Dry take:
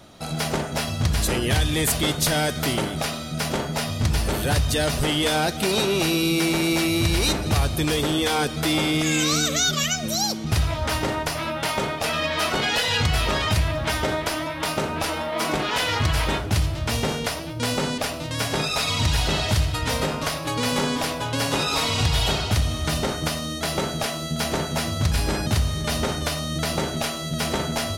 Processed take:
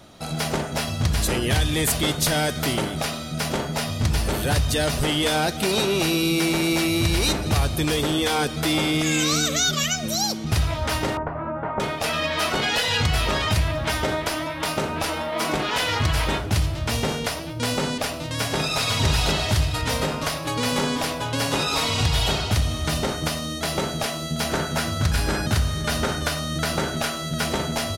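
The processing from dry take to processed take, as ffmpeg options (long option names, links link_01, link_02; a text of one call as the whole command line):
ffmpeg -i in.wav -filter_complex "[0:a]asettb=1/sr,asplit=3[link_01][link_02][link_03];[link_01]atrim=end=11.174[link_04];[link_02]atrim=start=11.17:end=11.8,asetpts=PTS-STARTPTS,afade=type=in:duration=0.004:curve=qsin,afade=type=out:start_time=0.626:duration=0.004:curve=qsin,lowpass=frequency=1400:width=0.5412,lowpass=frequency=1400:width=1.3066[link_05];[link_03]atrim=start=11.796[link_06];[link_04][link_05]acrossfade=duration=0.004:curve1=hsin:curve2=qsin[link_07];[link_07][link_06]acrossfade=duration=0.004:curve1=qsin:curve2=hsin,asplit=2[link_08][link_09];[link_09]afade=type=in:start_time=18.09:duration=0.01,afade=type=out:start_time=18.81:duration=0.01,aecho=0:1:500|1000|1500|2000:0.630957|0.220835|0.0772923|0.0270523[link_10];[link_08][link_10]amix=inputs=2:normalize=0,asettb=1/sr,asplit=3[link_11][link_12][link_13];[link_11]atrim=end=24.494[link_14];[link_12]atrim=start=24.49:end=27.45,asetpts=PTS-STARTPTS,afade=type=in:duration=0.004:curve=qsin,afade=type=out:start_time=2.956:duration=0.004:curve=qsin,equalizer=frequency=1500:width=3.6:gain=6.5[link_15];[link_13]atrim=start=27.446[link_16];[link_14][link_15]acrossfade=duration=0.004:curve1=hsin:curve2=qsin[link_17];[link_17][link_16]acrossfade=duration=0.004:curve1=qsin:curve2=hsin" out.wav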